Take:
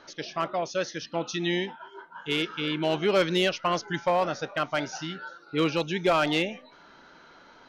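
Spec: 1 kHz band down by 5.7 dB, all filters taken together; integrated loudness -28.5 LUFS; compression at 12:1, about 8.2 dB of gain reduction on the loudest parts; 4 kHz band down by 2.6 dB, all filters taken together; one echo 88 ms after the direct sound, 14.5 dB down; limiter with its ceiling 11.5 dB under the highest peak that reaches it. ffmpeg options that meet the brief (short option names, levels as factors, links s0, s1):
-af "equalizer=f=1000:t=o:g=-8,equalizer=f=4000:t=o:g=-3,acompressor=threshold=0.0355:ratio=12,alimiter=level_in=2.24:limit=0.0631:level=0:latency=1,volume=0.447,aecho=1:1:88:0.188,volume=3.98"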